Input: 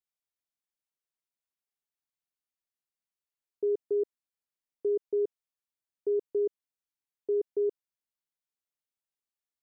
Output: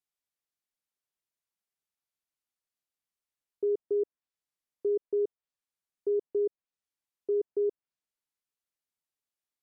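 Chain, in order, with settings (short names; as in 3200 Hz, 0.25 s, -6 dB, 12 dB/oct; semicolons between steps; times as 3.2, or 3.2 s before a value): treble ducked by the level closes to 1300 Hz, closed at -29.5 dBFS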